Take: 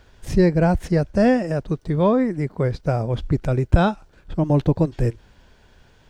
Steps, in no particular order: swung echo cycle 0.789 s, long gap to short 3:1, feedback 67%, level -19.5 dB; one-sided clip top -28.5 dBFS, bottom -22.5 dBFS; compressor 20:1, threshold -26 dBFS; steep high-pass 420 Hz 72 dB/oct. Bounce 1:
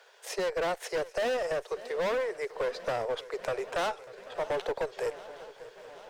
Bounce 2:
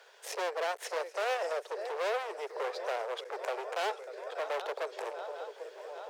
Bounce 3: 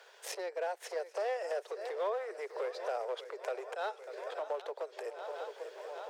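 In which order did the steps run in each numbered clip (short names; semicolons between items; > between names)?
steep high-pass > one-sided clip > swung echo > compressor; swung echo > one-sided clip > compressor > steep high-pass; swung echo > compressor > one-sided clip > steep high-pass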